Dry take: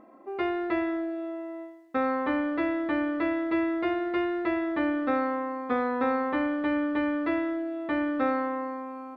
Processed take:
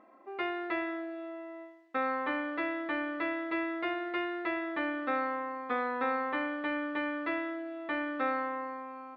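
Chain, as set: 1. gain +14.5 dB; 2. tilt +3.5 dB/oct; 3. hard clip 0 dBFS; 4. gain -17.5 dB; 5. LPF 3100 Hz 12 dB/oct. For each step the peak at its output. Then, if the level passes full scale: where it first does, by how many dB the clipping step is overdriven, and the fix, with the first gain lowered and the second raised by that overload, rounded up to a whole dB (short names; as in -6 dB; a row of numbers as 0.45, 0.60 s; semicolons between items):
-1.0, -2.0, -2.0, -19.5, -19.5 dBFS; no overload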